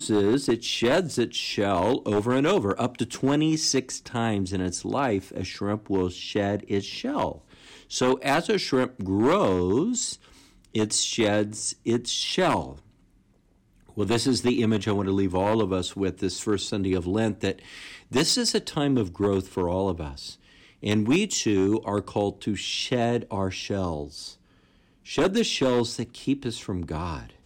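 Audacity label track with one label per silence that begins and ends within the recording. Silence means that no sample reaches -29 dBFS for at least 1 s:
12.680000	13.980000	silence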